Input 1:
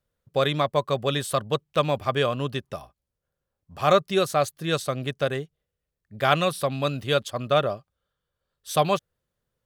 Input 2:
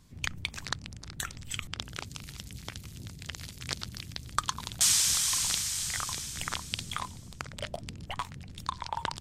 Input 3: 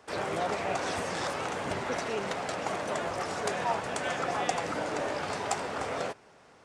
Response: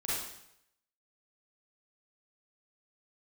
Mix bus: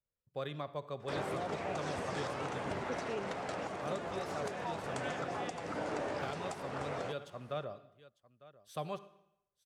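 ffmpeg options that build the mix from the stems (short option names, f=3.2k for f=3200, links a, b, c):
-filter_complex "[0:a]volume=-17dB,asplit=3[a][b][c];[b]volume=-18dB[d];[c]volume=-19.5dB[e];[2:a]adelay=1000,volume=-2.5dB[f];[3:a]atrim=start_sample=2205[g];[d][g]afir=irnorm=-1:irlink=0[h];[e]aecho=0:1:901:1[i];[a][f][h][i]amix=inputs=4:normalize=0,highshelf=f=3.3k:g=-8,acrossover=split=450|3000[j][k][l];[k]acompressor=threshold=-36dB:ratio=6[m];[j][m][l]amix=inputs=3:normalize=0,alimiter=level_in=3dB:limit=-24dB:level=0:latency=1:release=385,volume=-3dB"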